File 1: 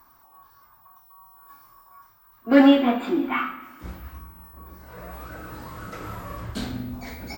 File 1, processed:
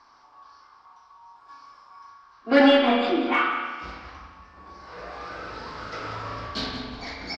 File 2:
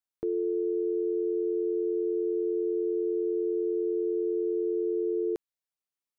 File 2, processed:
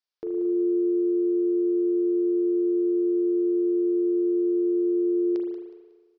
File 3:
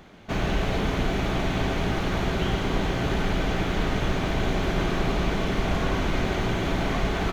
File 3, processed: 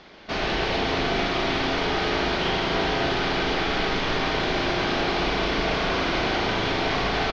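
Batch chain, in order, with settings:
elliptic low-pass 5.1 kHz, stop band 70 dB; tone controls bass -10 dB, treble +12 dB; in parallel at -11 dB: saturation -23 dBFS; on the sum: feedback delay 183 ms, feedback 30%, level -11.5 dB; spring tank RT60 1.4 s, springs 37 ms, chirp 35 ms, DRR 2 dB; normalise loudness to -24 LUFS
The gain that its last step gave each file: 0.0 dB, -1.0 dB, +0.5 dB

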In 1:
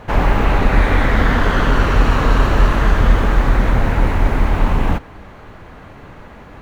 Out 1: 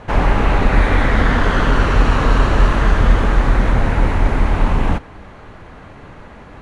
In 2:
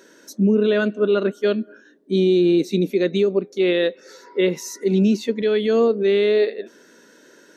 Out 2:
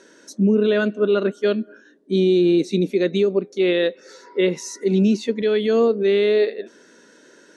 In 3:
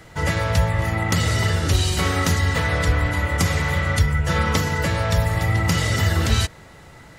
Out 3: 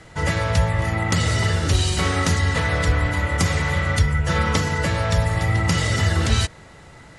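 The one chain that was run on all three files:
steep low-pass 11 kHz 72 dB/octave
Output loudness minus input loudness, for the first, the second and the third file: 0.0 LU, 0.0 LU, 0.0 LU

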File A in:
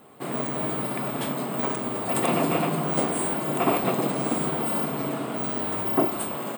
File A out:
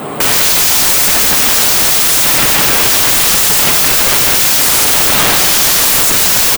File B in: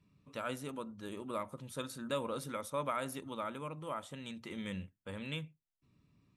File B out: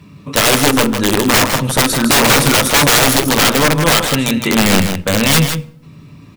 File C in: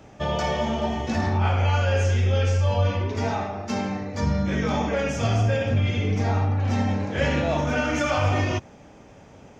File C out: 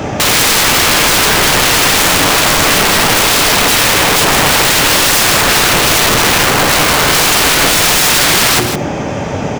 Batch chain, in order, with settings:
high-pass 62 Hz 12 dB/octave; treble shelf 4.1 kHz -2.5 dB; hum notches 60/120/180/240/300/360/420/480 Hz; compression 6:1, threshold -29 dBFS; peak limiter -25 dBFS; integer overflow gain 36 dB; delay 158 ms -7.5 dB; simulated room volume 3400 m³, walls furnished, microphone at 0.37 m; peak normalisation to -1.5 dBFS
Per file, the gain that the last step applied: +30.5 dB, +30.5 dB, +30.0 dB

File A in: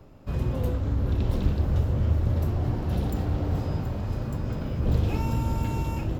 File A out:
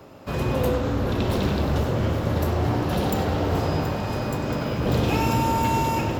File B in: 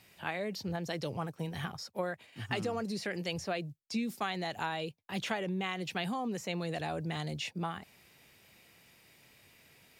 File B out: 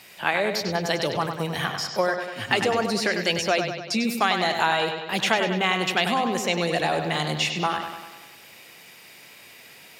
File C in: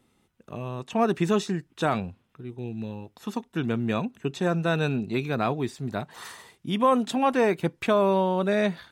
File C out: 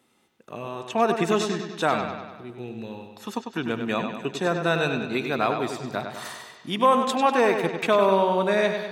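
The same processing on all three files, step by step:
high-pass 420 Hz 6 dB/octave; on a send: bucket-brigade echo 98 ms, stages 4096, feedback 58%, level -7 dB; on the sum: normalise loudness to -24 LUFS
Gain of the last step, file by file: +11.5 dB, +14.0 dB, +3.5 dB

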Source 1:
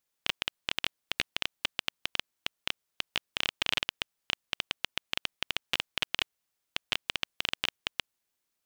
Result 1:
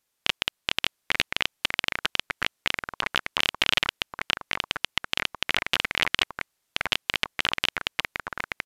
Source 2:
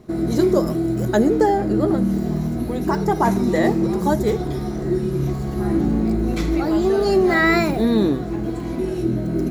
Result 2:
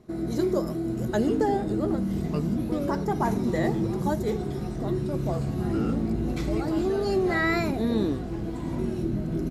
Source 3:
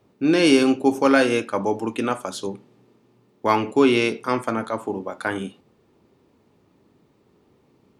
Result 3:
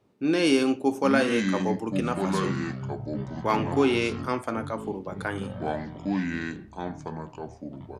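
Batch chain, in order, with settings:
ever faster or slower copies 730 ms, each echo -6 st, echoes 3, each echo -6 dB; resampled via 32 kHz; normalise loudness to -27 LUFS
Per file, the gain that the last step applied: +6.0 dB, -8.0 dB, -5.5 dB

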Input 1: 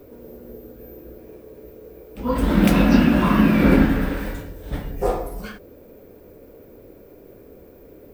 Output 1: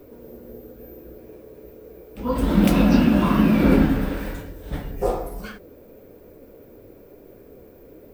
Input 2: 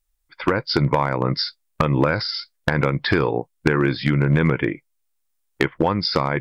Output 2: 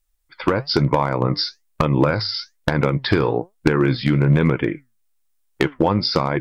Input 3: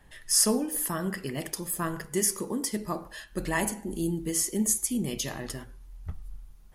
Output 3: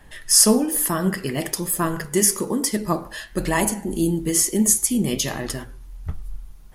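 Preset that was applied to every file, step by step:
dynamic bell 1.8 kHz, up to -5 dB, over -37 dBFS, Q 1.5; flange 1.1 Hz, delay 2.7 ms, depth 7.6 ms, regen +79%; normalise loudness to -20 LUFS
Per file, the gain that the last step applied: +3.5 dB, +6.5 dB, +13.0 dB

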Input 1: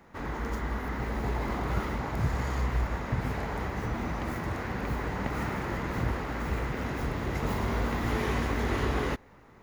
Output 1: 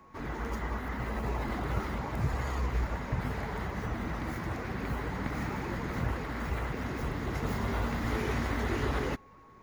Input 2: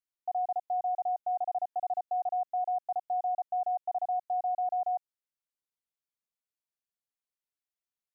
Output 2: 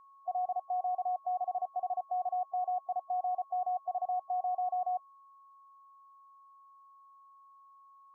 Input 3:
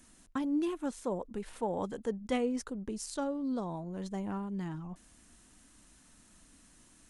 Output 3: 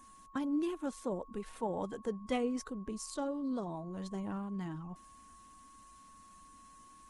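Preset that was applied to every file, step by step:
coarse spectral quantiser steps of 15 dB; whistle 1.1 kHz -54 dBFS; trim -2 dB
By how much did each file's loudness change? -2.5 LU, -2.5 LU, -2.5 LU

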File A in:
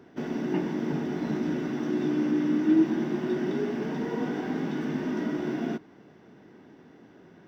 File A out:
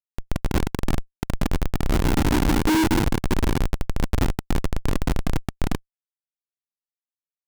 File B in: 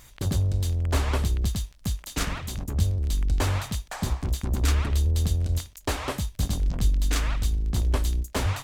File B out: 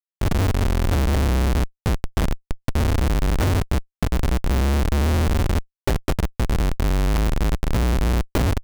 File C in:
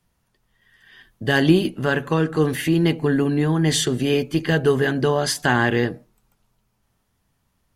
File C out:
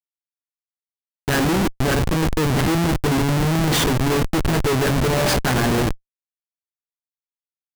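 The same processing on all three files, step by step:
feedback comb 65 Hz, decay 0.78 s, harmonics all, mix 60%; filtered feedback delay 702 ms, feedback 56%, low-pass 2.3 kHz, level -16.5 dB; Schmitt trigger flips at -28.5 dBFS; peak normalisation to -12 dBFS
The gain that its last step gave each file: +17.0 dB, +12.5 dB, +10.0 dB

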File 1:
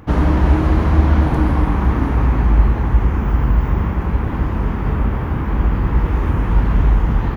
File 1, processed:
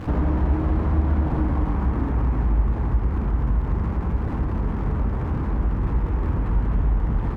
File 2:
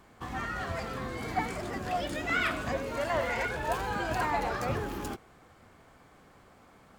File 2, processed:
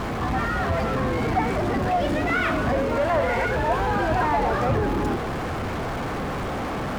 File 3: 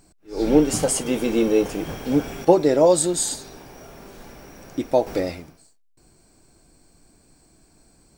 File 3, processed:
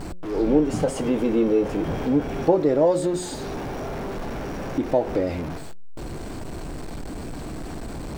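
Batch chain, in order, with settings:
jump at every zero crossing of -27 dBFS; low-pass 1.1 kHz 6 dB/octave; de-hum 180.4 Hz, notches 3; compression 1.5:1, threshold -26 dBFS; normalise loudness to -24 LUFS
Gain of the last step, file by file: -1.5 dB, +7.0 dB, +2.5 dB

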